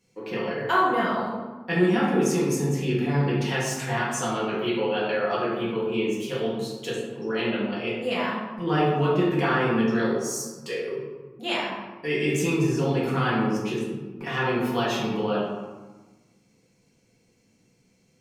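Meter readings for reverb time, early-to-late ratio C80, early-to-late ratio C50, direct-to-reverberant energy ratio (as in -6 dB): 1.3 s, 3.5 dB, 0.5 dB, -7.0 dB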